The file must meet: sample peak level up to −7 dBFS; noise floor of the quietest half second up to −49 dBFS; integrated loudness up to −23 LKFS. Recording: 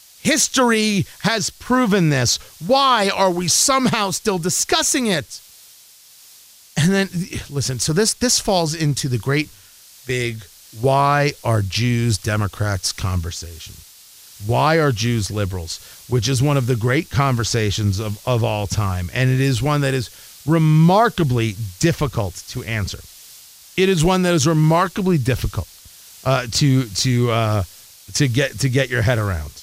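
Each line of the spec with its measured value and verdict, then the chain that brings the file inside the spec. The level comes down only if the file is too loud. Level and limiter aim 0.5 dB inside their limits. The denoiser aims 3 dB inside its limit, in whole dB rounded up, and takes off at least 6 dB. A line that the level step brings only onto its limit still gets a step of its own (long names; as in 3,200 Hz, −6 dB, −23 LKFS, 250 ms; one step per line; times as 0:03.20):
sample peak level −5.0 dBFS: out of spec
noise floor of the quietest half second −47 dBFS: out of spec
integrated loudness −18.5 LKFS: out of spec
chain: level −5 dB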